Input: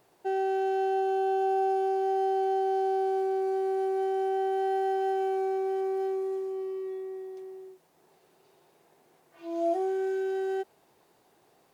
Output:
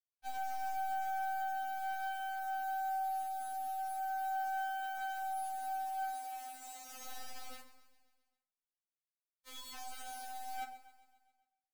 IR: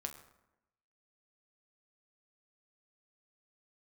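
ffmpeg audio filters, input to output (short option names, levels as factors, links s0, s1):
-filter_complex "[0:a]highpass=f=200:p=1,areverse,acompressor=threshold=0.00708:ratio=5,areverse,acrusher=bits=6:mix=0:aa=0.000001,aecho=1:1:134|268|402|536|670|804:0.15|0.0898|0.0539|0.0323|0.0194|0.0116[s0];[1:a]atrim=start_sample=2205[s1];[s0][s1]afir=irnorm=-1:irlink=0,afftfilt=real='re*3.46*eq(mod(b,12),0)':imag='im*3.46*eq(mod(b,12),0)':win_size=2048:overlap=0.75,volume=1.58"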